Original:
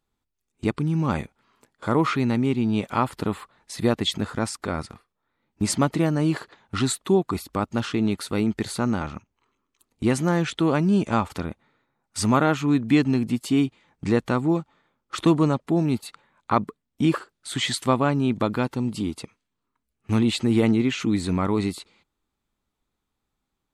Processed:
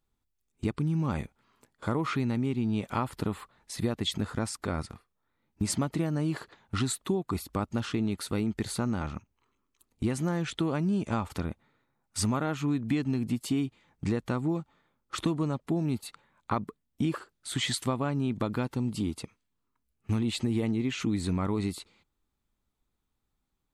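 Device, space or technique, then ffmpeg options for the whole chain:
ASMR close-microphone chain: -filter_complex "[0:a]asettb=1/sr,asplit=3[s0][s1][s2];[s0]atrim=end=20.364[s3];[s1]atrim=start=20.36:end=20.9,asetpts=PTS-STARTPTS,afade=t=in:d=0.004:c=qsin,afade=t=out:st=0.536:d=0.004:c=qsin,bandreject=f=1400:w=6.9[s4];[s2]atrim=start=20.896[s5];[s3][s4]acrossfade=d=0.004:c1=hsin:c2=qsin[s6];[s6][s5]acrossfade=d=0.004:c1=qsin:c2=hsin,lowshelf=f=140:g=7,acompressor=threshold=0.1:ratio=6,highshelf=f=9900:g=5,volume=0.596"

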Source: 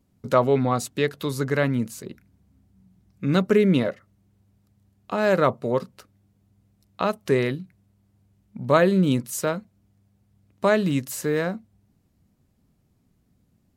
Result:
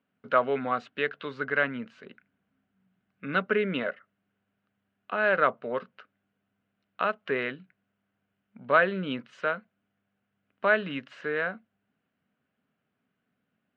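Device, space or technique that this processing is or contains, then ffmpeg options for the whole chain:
phone earpiece: -af "highpass=340,equalizer=f=340:t=q:w=4:g=-10,equalizer=f=530:t=q:w=4:g=-3,equalizer=f=890:t=q:w=4:g=-6,equalizer=f=1500:t=q:w=4:g=9,equalizer=f=2900:t=q:w=4:g=5,lowpass=f=3000:w=0.5412,lowpass=f=3000:w=1.3066,volume=0.75"

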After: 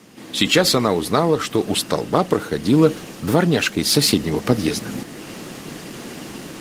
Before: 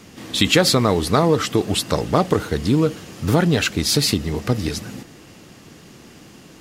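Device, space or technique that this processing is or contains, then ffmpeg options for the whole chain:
video call: -filter_complex "[0:a]asettb=1/sr,asplit=3[s0][s1][s2];[s0]atrim=end=0.984[s3];[s1]atrim=start=0.98:end=1.6,asetpts=PTS-STARTPTS,afade=t=in:d=0.004:c=qsin,afade=t=out:st=0.616:d=0.004:c=qsin,asubboost=boost=7.5:cutoff=120[s4];[s2]atrim=start=1.596[s5];[s3][s4]acrossfade=d=0.004:c1=hsin:c2=qsin[s6];[s6][s5]acrossfade=d=0.004:c1=qsin:c2=hsin,highpass=160,dynaudnorm=f=220:g=3:m=5.01,volume=0.891" -ar 48000 -c:a libopus -b:a 24k

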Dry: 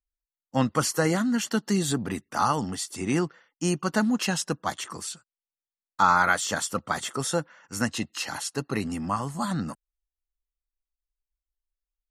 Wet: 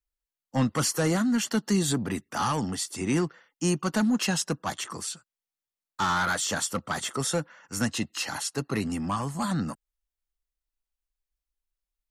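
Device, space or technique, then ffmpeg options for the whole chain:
one-band saturation: -filter_complex "[0:a]acrossover=split=240|4400[s0][s1][s2];[s1]asoftclip=type=tanh:threshold=0.0668[s3];[s0][s3][s2]amix=inputs=3:normalize=0,volume=1.12"

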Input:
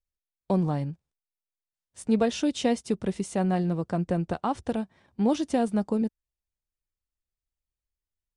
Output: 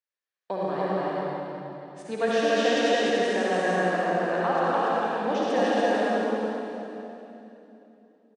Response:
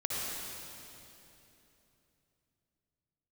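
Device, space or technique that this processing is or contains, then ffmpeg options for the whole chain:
station announcement: -filter_complex "[0:a]highpass=490,lowpass=4500,equalizer=f=1700:t=o:w=0.32:g=8.5,aecho=1:1:218.7|288.6:0.355|0.891[s0];[1:a]atrim=start_sample=2205[s1];[s0][s1]afir=irnorm=-1:irlink=0"

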